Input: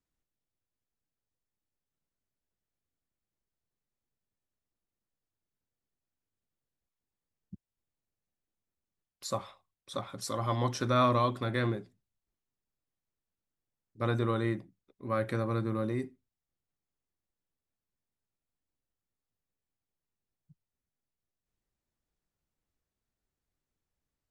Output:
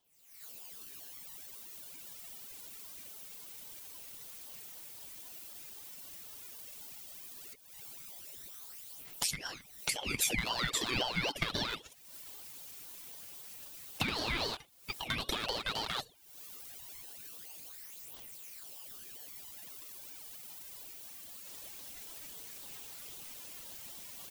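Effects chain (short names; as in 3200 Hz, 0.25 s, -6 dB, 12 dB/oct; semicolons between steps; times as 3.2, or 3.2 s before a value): rattling part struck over -33 dBFS, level -26 dBFS; recorder AGC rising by 69 dB/s; steep high-pass 880 Hz 48 dB/oct; high shelf 10000 Hz +9.5 dB; comb 7 ms, depth 57%; compressor 3:1, threshold -43 dBFS, peak gain reduction 15.5 dB; phaser 0.11 Hz, delay 3.5 ms, feedback 69%; 14.08–14.57 flutter echo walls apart 8.2 m, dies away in 0.38 s; crackling interface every 0.14 s, samples 256, repeat, from 0.36; ring modulator with a swept carrier 1500 Hz, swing 35%, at 3.8 Hz; gain +9.5 dB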